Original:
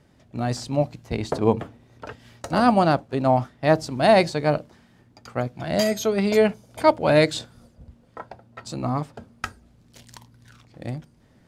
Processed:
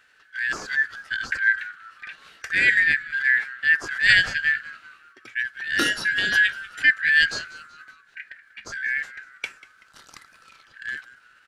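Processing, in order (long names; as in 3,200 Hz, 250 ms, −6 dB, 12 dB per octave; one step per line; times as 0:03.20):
band-splitting scrambler in four parts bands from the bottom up 4123
formants moved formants −3 semitones
echo with shifted repeats 190 ms, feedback 44%, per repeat −120 Hz, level −18.5 dB
level −1 dB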